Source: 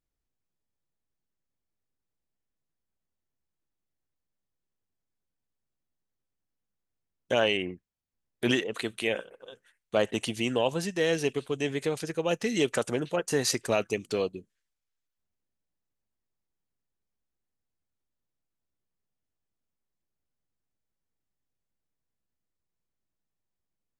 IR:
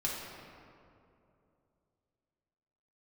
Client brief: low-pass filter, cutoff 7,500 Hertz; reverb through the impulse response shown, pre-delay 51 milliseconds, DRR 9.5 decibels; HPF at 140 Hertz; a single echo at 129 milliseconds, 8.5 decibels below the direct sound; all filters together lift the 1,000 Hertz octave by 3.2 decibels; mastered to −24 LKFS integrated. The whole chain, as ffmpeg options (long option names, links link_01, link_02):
-filter_complex "[0:a]highpass=140,lowpass=7500,equalizer=frequency=1000:width_type=o:gain=4.5,aecho=1:1:129:0.376,asplit=2[link_01][link_02];[1:a]atrim=start_sample=2205,adelay=51[link_03];[link_02][link_03]afir=irnorm=-1:irlink=0,volume=-14.5dB[link_04];[link_01][link_04]amix=inputs=2:normalize=0,volume=3.5dB"